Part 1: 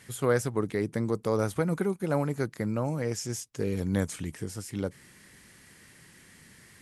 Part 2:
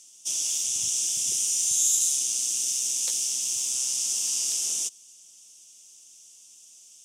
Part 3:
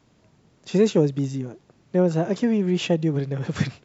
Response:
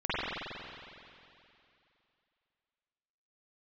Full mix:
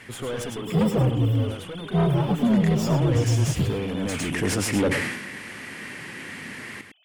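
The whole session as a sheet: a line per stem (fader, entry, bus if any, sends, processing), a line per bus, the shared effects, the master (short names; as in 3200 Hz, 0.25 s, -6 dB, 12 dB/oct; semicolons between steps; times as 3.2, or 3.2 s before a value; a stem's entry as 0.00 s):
2.09 s -9.5 dB -> 2.65 s -1.5 dB, 0.00 s, no send, echo send -8 dB, fifteen-band EQ 100 Hz +5 dB, 250 Hz +6 dB, 2500 Hz +7 dB, 10000 Hz +3 dB; overdrive pedal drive 31 dB, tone 1000 Hz, clips at -10 dBFS; sustainer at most 50 dB/s; auto duck -16 dB, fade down 1.70 s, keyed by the third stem
-13.0 dB, 0.00 s, no send, no echo send, sine-wave speech; compressor, threshold -27 dBFS, peak gain reduction 7 dB; soft clip -28 dBFS, distortion -15 dB
+1.5 dB, 0.00 s, no send, echo send -10 dB, inharmonic rescaling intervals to 128%; tone controls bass +8 dB, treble -3 dB; soft clip -18 dBFS, distortion -10 dB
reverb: off
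echo: echo 0.106 s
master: dry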